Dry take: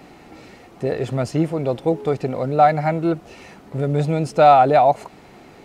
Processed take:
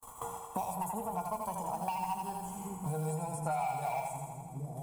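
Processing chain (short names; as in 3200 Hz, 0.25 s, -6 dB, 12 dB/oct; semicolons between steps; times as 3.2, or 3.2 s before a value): speed glide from 151% -> 83%; gate -41 dBFS, range -57 dB; EQ curve 100 Hz 0 dB, 210 Hz -9 dB, 320 Hz -23 dB, 510 Hz -21 dB, 930 Hz +7 dB, 1500 Hz -19 dB, 5100 Hz -14 dB, 8300 Hz +13 dB; limiter -11.5 dBFS, peak gain reduction 12 dB; soft clip -13 dBFS, distortion -20 dB; short-mantissa float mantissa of 4-bit; resonator 470 Hz, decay 0.26 s, harmonics odd, mix 90%; split-band echo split 350 Hz, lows 0.409 s, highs 82 ms, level -4.5 dB; on a send at -8 dB: reverb RT60 0.20 s, pre-delay 3 ms; on the sum: three-band squash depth 100%; gain +6.5 dB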